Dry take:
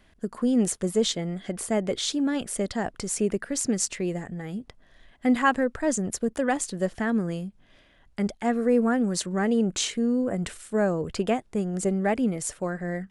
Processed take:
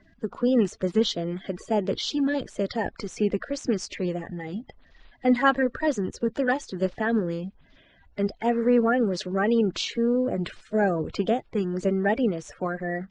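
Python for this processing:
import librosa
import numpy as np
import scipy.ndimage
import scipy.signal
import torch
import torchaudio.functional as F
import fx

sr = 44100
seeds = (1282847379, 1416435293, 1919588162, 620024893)

y = fx.spec_quant(x, sr, step_db=30)
y = scipy.signal.sosfilt(scipy.signal.butter(4, 5000.0, 'lowpass', fs=sr, output='sos'), y)
y = F.gain(torch.from_numpy(y), 1.5).numpy()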